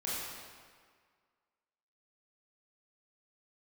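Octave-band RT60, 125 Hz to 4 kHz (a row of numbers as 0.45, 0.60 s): 1.6, 1.7, 1.7, 1.8, 1.7, 1.4 s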